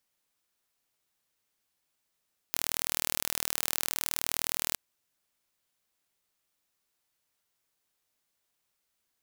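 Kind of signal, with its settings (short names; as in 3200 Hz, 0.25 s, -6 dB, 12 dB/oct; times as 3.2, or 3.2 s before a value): pulse train 39.4/s, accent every 0, -2.5 dBFS 2.21 s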